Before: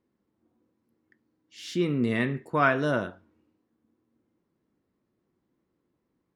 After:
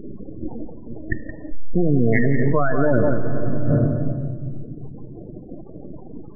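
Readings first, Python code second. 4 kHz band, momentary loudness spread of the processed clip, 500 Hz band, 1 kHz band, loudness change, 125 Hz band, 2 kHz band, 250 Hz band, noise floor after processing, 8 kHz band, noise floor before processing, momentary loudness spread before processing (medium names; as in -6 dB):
under -40 dB, 20 LU, +9.0 dB, +1.0 dB, +4.5 dB, +14.0 dB, +2.0 dB, +9.0 dB, -38 dBFS, under -25 dB, -79 dBFS, 12 LU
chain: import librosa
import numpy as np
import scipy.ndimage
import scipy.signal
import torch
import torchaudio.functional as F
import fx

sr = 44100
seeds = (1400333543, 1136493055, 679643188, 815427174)

p1 = np.maximum(x, 0.0)
p2 = fx.dereverb_blind(p1, sr, rt60_s=1.8)
p3 = fx.lowpass(p2, sr, hz=1100.0, slope=6)
p4 = fx.rider(p3, sr, range_db=10, speed_s=0.5)
p5 = p3 + F.gain(torch.from_numpy(p4), 1.5).numpy()
p6 = fx.spec_gate(p5, sr, threshold_db=-15, keep='strong')
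p7 = p6 + fx.echo_single(p6, sr, ms=172, db=-12.0, dry=0)
p8 = fx.room_shoebox(p7, sr, seeds[0], volume_m3=2300.0, walls='mixed', distance_m=0.45)
p9 = fx.env_flatten(p8, sr, amount_pct=100)
y = F.gain(torch.from_numpy(p9), 1.5).numpy()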